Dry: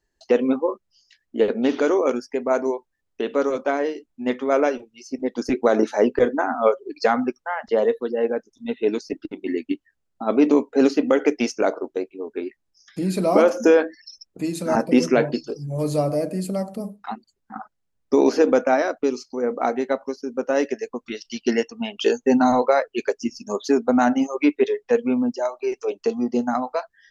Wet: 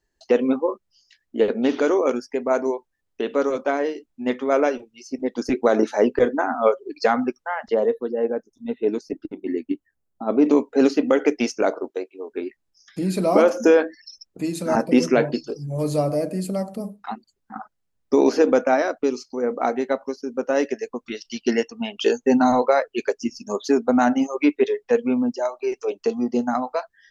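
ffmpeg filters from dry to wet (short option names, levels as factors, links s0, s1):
-filter_complex "[0:a]asettb=1/sr,asplit=3[s0][s1][s2];[s0]atrim=end=7.744[s3];[s1]atrim=start=7.74:end=10.46,asetpts=PTS-STARTPTS,afade=t=in:d=0.004:c=qsin,afade=t=out:st=2.716:d=0.004:c=qsin,equalizer=f=3300:t=o:w=2.4:g=-9[s4];[s2]atrim=start=10.456[s5];[s3][s4]acrossfade=d=0.004:c1=hsin:c2=qsin[s6];[s6][s5]acrossfade=d=0.004:c1=qsin:c2=hsin,asettb=1/sr,asplit=3[s7][s8][s9];[s7]atrim=end=11.904[s10];[s8]atrim=start=11.9:end=12.32,asetpts=PTS-STARTPTS,afade=t=in:d=0.004:c=qsin,afade=t=out:st=0.416:d=0.004:c=qsin,highpass=380[s11];[s9]atrim=start=12.316[s12];[s10][s11]acrossfade=d=0.004:c1=hsin:c2=qsin[s13];[s13][s12]acrossfade=d=0.004:c1=qsin:c2=hsin"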